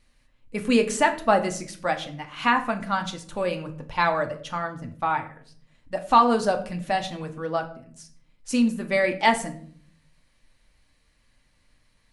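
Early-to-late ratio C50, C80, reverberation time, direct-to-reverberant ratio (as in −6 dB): 13.0 dB, 16.5 dB, 0.55 s, 4.5 dB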